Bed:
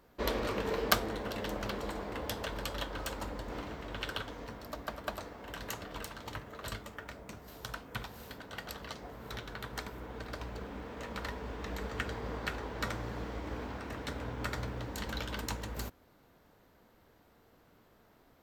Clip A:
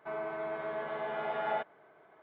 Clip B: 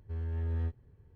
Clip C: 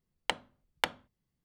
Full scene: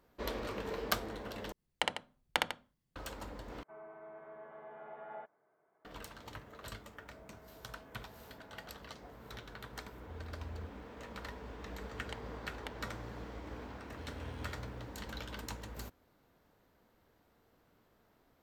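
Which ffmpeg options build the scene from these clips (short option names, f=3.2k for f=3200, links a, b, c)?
-filter_complex "[3:a]asplit=2[a][b];[1:a]asplit=2[c][d];[2:a]asplit=2[e][f];[0:a]volume=-6dB[g];[a]aecho=1:1:61.22|148.7:0.794|0.316[h];[c]lowpass=1.7k[i];[d]acompressor=threshold=-53dB:ratio=3:attack=29:release=30:knee=1:detection=peak[j];[b]alimiter=limit=-17.5dB:level=0:latency=1:release=292[k];[f]aexciter=amount=12:drive=8.2:freq=2k[l];[g]asplit=3[m][n][o];[m]atrim=end=1.524[p];[h]atrim=end=1.44,asetpts=PTS-STARTPTS,volume=-3dB[q];[n]atrim=start=2.956:end=3.634[r];[i]atrim=end=2.22,asetpts=PTS-STARTPTS,volume=-14dB[s];[o]atrim=start=5.846[t];[j]atrim=end=2.22,asetpts=PTS-STARTPTS,volume=-15dB,afade=t=in:d=0.004:c=hsin,afade=t=out:st=2.216:d=0.004:c=hsin,adelay=7040[u];[e]atrim=end=1.15,asetpts=PTS-STARTPTS,volume=-13dB,afade=t=in:d=0.004:c=hsin,afade=t=out:st=1.146:d=0.004:c=hsin,adelay=9980[v];[k]atrim=end=1.44,asetpts=PTS-STARTPTS,volume=-8dB,afade=t=in:d=0.004:c=hsin,afade=t=out:st=1.436:d=0.004:c=hsin,adelay=11830[w];[l]atrim=end=1.15,asetpts=PTS-STARTPTS,volume=-15.5dB,afade=t=in:d=0.004:c=hsin,afade=t=out:st=1.146:d=0.004:c=hsin,adelay=13880[x];[p][q]acrossfade=d=0.004:c1=hsin:c2=hsin[y];[y][r]acrossfade=d=0.004:c1=hsin:c2=hsin[z];[z][s]acrossfade=d=0.004:c1=hsin:c2=hsin[aa];[aa][t]acrossfade=d=0.004:c1=hsin:c2=hsin[ab];[ab][u][v][w][x]amix=inputs=5:normalize=0"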